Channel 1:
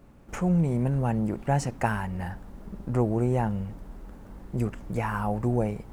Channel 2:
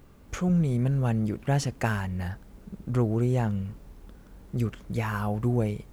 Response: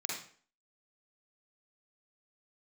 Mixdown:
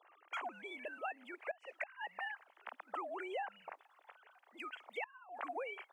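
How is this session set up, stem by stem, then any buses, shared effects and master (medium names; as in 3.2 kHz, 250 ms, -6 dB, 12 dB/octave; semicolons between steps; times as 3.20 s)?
-19.5 dB, 0.00 s, no send, expander -39 dBFS
-0.5 dB, 0.00 s, no send, formants replaced by sine waves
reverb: none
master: high-pass 690 Hz 24 dB/octave; inverted gate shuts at -23 dBFS, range -27 dB; compression 6:1, threshold -38 dBFS, peak gain reduction 9 dB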